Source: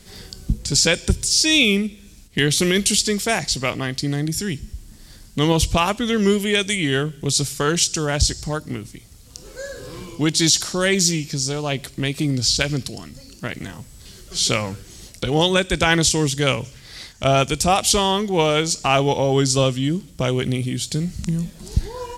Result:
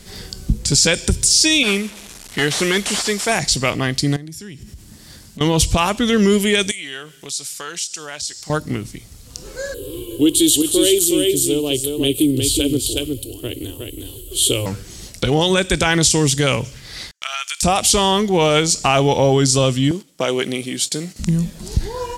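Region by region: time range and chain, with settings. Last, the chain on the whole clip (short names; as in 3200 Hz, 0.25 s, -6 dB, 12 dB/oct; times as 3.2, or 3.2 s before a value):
1.63–3.32 delta modulation 64 kbps, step -32.5 dBFS + low shelf 290 Hz -11.5 dB
4.16–5.41 HPF 68 Hz + compressor 8:1, threshold -36 dBFS
6.71–8.5 HPF 1400 Hz 6 dB/oct + compressor 2:1, threshold -38 dBFS
9.74–14.66 EQ curve 110 Hz 0 dB, 190 Hz -23 dB, 290 Hz +4 dB, 430 Hz +4 dB, 680 Hz -12 dB, 2000 Hz -20 dB, 3100 Hz +5 dB, 5400 Hz -19 dB, 8200 Hz +1 dB, 12000 Hz +11 dB + echo 0.364 s -4.5 dB
17.11–17.63 HPF 1300 Hz 24 dB/oct + gate -47 dBFS, range -30 dB + compressor 4:1, threshold -26 dBFS
19.91–21.2 gate -34 dBFS, range -9 dB + HPF 320 Hz
whole clip: limiter -10.5 dBFS; dynamic EQ 8900 Hz, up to +4 dB, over -39 dBFS, Q 1.3; gain +5 dB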